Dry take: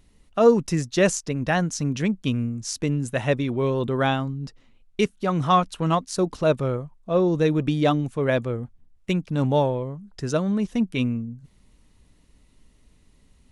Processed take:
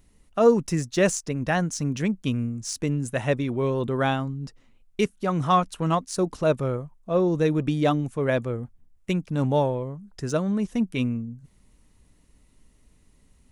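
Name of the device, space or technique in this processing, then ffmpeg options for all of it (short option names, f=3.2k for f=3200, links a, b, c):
exciter from parts: -filter_complex "[0:a]asplit=2[a][b];[b]highpass=4.5k,asoftclip=type=tanh:threshold=-33.5dB,highpass=2.1k,volume=-4dB[c];[a][c]amix=inputs=2:normalize=0,volume=-1.5dB"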